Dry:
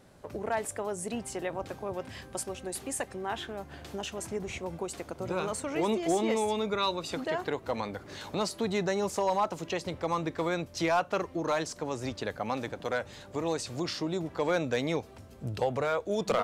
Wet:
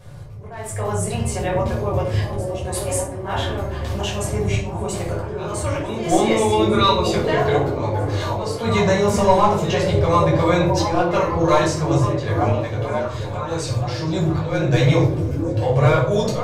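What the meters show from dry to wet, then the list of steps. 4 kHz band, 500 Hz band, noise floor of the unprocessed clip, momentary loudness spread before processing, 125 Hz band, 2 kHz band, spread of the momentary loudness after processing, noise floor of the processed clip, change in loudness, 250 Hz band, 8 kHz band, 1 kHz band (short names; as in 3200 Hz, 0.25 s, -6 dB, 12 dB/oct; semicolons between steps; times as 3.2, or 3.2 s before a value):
+10.5 dB, +11.5 dB, -51 dBFS, 9 LU, +21.0 dB, +9.5 dB, 9 LU, -30 dBFS, +12.5 dB, +12.0 dB, +9.0 dB, +11.5 dB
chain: resonant low shelf 170 Hz +7.5 dB, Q 3; notches 60/120/180/240/300/360/420/480 Hz; auto swell 0.391 s; on a send: delay with a stepping band-pass 0.472 s, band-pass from 270 Hz, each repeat 0.7 oct, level -1 dB; on the sum: shoebox room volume 500 m³, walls furnished, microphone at 5.6 m; gain +4 dB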